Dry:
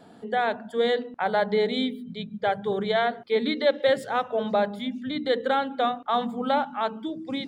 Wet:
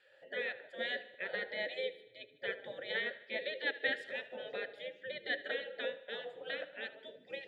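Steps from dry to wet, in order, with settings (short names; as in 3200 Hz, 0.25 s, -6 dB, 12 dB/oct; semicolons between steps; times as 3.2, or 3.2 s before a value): spectral gate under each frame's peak -15 dB weak; vowel filter e; thinning echo 76 ms, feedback 60%, high-pass 200 Hz, level -17.5 dB; gain +9 dB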